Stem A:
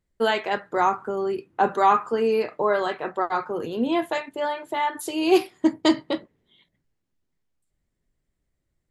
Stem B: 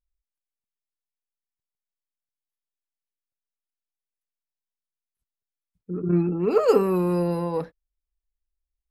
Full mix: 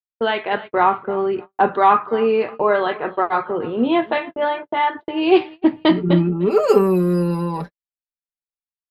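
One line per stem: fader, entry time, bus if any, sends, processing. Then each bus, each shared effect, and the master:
+1.5 dB, 0.00 s, no send, echo send -19.5 dB, low-pass opened by the level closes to 430 Hz, open at -19.5 dBFS; steep low-pass 3700 Hz 36 dB/oct
-1.5 dB, 0.00 s, no send, no echo send, comb 5.1 ms, depth 95%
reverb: off
echo: feedback echo 0.302 s, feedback 37%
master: gate -33 dBFS, range -48 dB; AGC gain up to 4.5 dB

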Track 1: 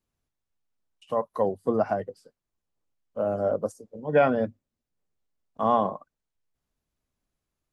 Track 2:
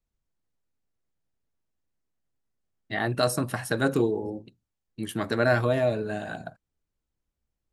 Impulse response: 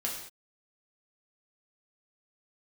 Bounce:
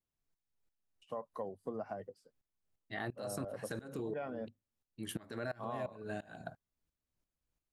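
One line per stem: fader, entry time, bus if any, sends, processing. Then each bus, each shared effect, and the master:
-11.0 dB, 0.00 s, no send, dry
+0.5 dB, 0.00 s, no send, limiter -18 dBFS, peak gain reduction 8 dB; dB-ramp tremolo swelling 2.9 Hz, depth 24 dB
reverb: off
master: compressor 6:1, threshold -37 dBFS, peak gain reduction 13 dB

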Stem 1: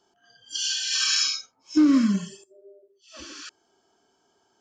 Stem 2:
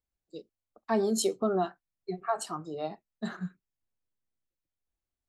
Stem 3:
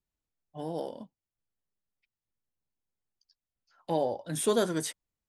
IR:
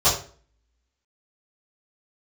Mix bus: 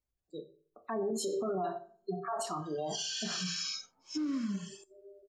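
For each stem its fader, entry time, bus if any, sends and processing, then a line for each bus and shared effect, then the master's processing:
-4.0 dB, 2.40 s, bus A, no send, dry
0.0 dB, 0.00 s, no bus, send -22.5 dB, spectral gate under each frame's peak -25 dB strong
off
bus A: 0.0 dB, compressor 6:1, threshold -32 dBFS, peak gain reduction 12.5 dB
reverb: on, RT60 0.45 s, pre-delay 3 ms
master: limiter -27 dBFS, peak gain reduction 11.5 dB

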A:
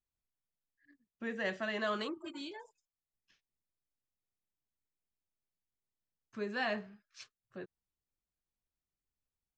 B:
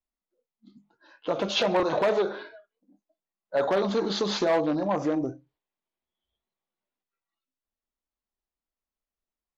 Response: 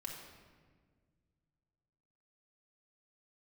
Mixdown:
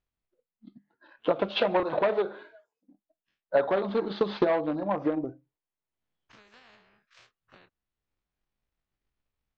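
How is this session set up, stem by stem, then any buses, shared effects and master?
-16.5 dB, 0.00 s, no send, spectral dilation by 60 ms; limiter -25.5 dBFS, peak gain reduction 6.5 dB; spectral compressor 4:1; auto duck -15 dB, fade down 0.65 s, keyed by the second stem
-4.0 dB, 0.00 s, no send, LPF 4600 Hz 24 dB/oct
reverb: off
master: LPF 3300 Hz 12 dB/oct; transient shaper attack +9 dB, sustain -3 dB

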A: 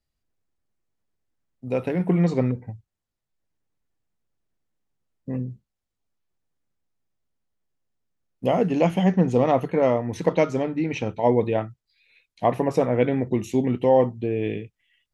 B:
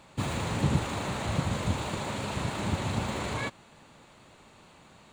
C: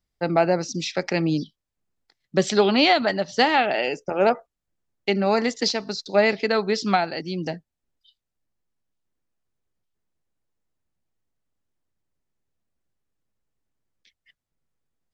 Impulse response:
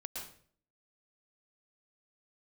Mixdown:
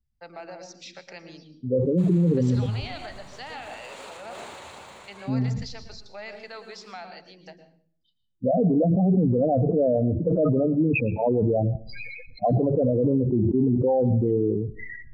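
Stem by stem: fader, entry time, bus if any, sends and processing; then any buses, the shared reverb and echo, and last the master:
+2.5 dB, 0.00 s, no bus, send -15 dB, Wiener smoothing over 15 samples; loudest bins only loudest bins 8; sustainer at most 32 dB/s
-4.5 dB, 1.80 s, bus A, send -20 dB, auto duck -11 dB, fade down 0.75 s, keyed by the first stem
-15.0 dB, 0.00 s, bus A, send -7 dB, dry
bus A: 0.0 dB, HPF 390 Hz 24 dB/oct; limiter -32 dBFS, peak gain reduction 11 dB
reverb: on, RT60 0.50 s, pre-delay 0.106 s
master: limiter -14 dBFS, peak gain reduction 9.5 dB

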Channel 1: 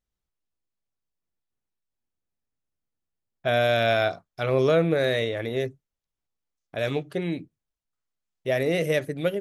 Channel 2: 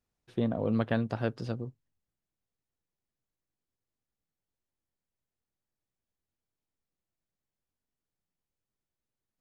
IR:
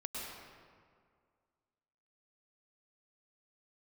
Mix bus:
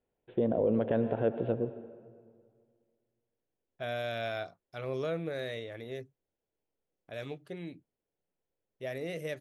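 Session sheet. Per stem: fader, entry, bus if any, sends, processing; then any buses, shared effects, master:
-13.5 dB, 0.35 s, no send, dry
-4.0 dB, 0.00 s, send -13 dB, steep low-pass 3500 Hz 72 dB/oct; bell 480 Hz +14 dB 1.5 oct; notch 1200 Hz, Q 6.6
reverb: on, RT60 2.0 s, pre-delay 96 ms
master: limiter -19 dBFS, peak gain reduction 8 dB

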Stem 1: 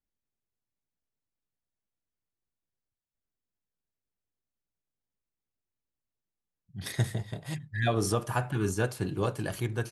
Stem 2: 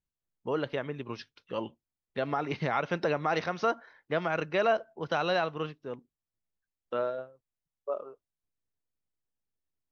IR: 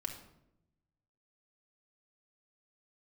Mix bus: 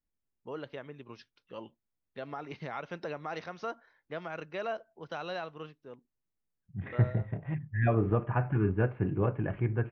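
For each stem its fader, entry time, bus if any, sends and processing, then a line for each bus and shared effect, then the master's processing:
-3.5 dB, 0.00 s, no send, steep low-pass 2500 Hz 48 dB/oct; low shelf 450 Hz +6.5 dB
-9.5 dB, 0.00 s, no send, dry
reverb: off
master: dry

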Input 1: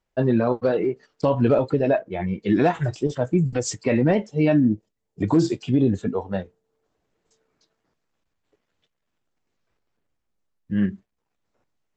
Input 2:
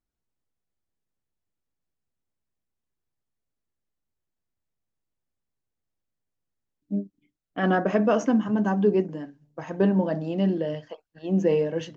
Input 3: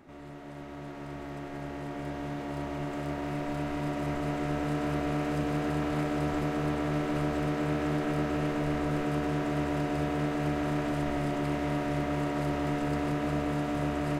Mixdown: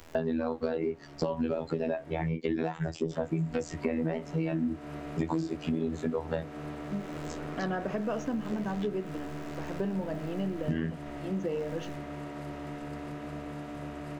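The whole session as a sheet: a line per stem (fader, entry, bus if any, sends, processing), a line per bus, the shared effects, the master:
+0.5 dB, 0.00 s, no send, robotiser 81 Hz; three-band squash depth 100%
-6.0 dB, 0.00 s, no send, dry
-9.5 dB, 0.00 s, muted 2.29–3.11, no send, dry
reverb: off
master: compressor 3:1, threshold -30 dBFS, peak gain reduction 11 dB

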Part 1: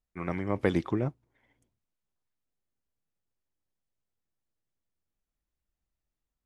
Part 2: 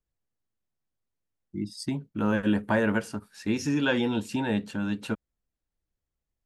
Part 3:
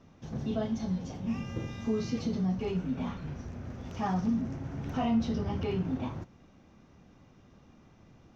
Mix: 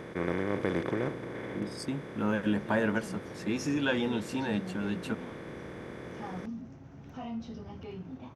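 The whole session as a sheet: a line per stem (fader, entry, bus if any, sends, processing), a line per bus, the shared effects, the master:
-7.5 dB, 0.00 s, no send, per-bin compression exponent 0.2
-3.5 dB, 0.00 s, no send, dry
-10.0 dB, 2.20 s, no send, dry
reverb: off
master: low shelf 75 Hz -7.5 dB

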